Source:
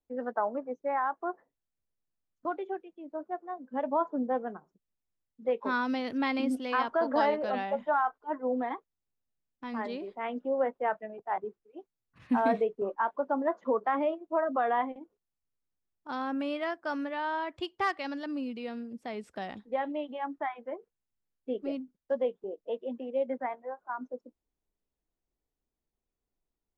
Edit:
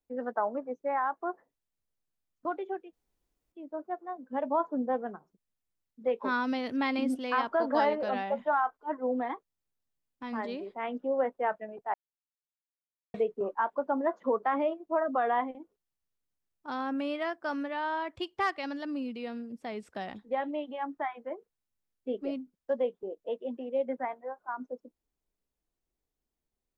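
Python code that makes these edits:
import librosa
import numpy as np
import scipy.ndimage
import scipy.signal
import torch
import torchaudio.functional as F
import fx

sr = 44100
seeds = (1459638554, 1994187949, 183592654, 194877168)

y = fx.edit(x, sr, fx.insert_room_tone(at_s=2.93, length_s=0.59),
    fx.silence(start_s=11.35, length_s=1.2), tone=tone)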